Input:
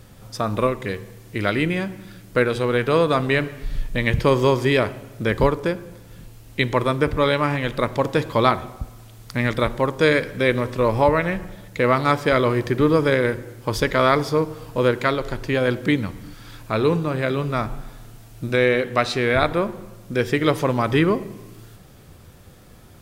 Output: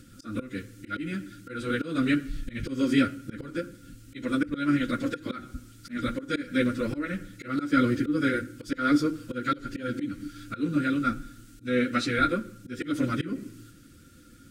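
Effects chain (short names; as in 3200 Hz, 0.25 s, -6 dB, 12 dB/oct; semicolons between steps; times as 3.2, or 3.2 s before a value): EQ curve 180 Hz 0 dB, 290 Hz +14 dB, 440 Hz -16 dB, 930 Hz -22 dB, 1300 Hz -2 dB, 8700 Hz +7 dB, 12000 Hz +1 dB; plain phase-vocoder stretch 0.63×; dynamic EQ 760 Hz, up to +5 dB, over -41 dBFS, Q 1.9; auto swell 0.216 s; small resonant body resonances 510/1400 Hz, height 17 dB, ringing for 50 ms; gain -5 dB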